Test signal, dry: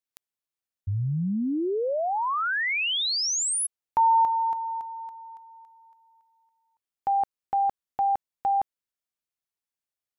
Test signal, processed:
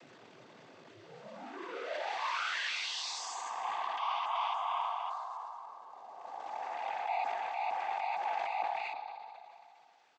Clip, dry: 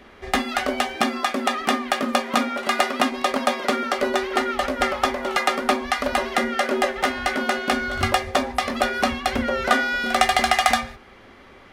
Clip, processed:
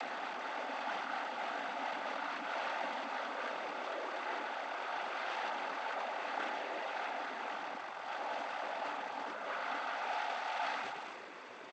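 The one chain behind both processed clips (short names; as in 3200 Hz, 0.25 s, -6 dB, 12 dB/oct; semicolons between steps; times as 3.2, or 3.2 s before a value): spectral swells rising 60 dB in 2.97 s; tilt -4 dB/oct; compressor 10:1, threshold -26 dBFS; soft clip -31.5 dBFS; short-mantissa float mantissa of 2-bit; echo 0.312 s -16.5 dB; spring tank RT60 1.7 s, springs 59 ms, chirp 20 ms, DRR 15 dB; noise vocoder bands 16; BPF 730–4700 Hz; sustainer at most 24 dB/s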